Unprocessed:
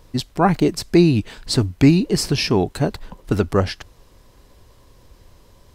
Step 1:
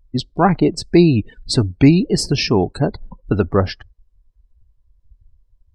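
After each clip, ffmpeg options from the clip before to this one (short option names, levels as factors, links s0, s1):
-af "afftdn=nr=35:nf=-32,volume=1.26"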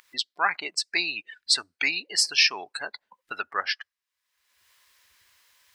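-af "highpass=f=1800:t=q:w=1.7,acompressor=mode=upward:threshold=0.0112:ratio=2.5"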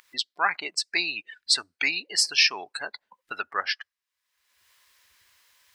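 -af anull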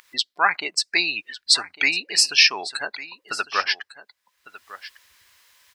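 -af "aecho=1:1:1152:0.15,volume=1.78"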